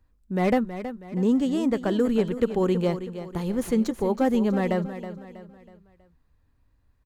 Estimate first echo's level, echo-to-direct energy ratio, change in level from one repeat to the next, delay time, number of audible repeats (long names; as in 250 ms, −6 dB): −11.5 dB, −10.5 dB, −7.5 dB, 322 ms, 4